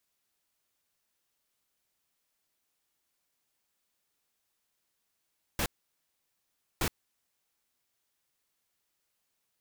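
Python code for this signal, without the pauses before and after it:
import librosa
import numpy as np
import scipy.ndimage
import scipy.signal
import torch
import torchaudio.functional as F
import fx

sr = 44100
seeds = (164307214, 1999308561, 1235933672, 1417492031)

y = fx.noise_burst(sr, seeds[0], colour='pink', on_s=0.07, off_s=1.15, bursts=2, level_db=-29.5)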